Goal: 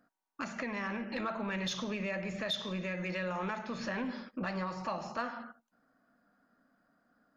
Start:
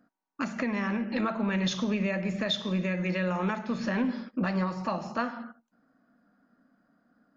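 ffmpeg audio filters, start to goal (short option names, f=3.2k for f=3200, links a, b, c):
-filter_complex "[0:a]equalizer=f=220:w=0.85:g=-7,asplit=2[a][b];[b]alimiter=level_in=5.5dB:limit=-24dB:level=0:latency=1:release=62,volume=-5.5dB,volume=-0.5dB[c];[a][c]amix=inputs=2:normalize=0,asoftclip=type=tanh:threshold=-17.5dB,volume=-6.5dB"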